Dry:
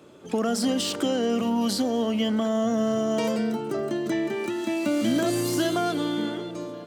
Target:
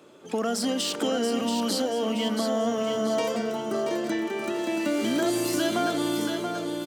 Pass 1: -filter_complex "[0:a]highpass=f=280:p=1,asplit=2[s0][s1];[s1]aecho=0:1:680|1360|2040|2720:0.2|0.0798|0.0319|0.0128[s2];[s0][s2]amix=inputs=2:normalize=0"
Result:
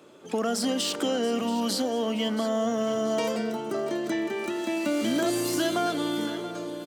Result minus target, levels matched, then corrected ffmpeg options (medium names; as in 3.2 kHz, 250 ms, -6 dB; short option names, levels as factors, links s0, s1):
echo-to-direct -8 dB
-filter_complex "[0:a]highpass=f=280:p=1,asplit=2[s0][s1];[s1]aecho=0:1:680|1360|2040|2720|3400:0.501|0.2|0.0802|0.0321|0.0128[s2];[s0][s2]amix=inputs=2:normalize=0"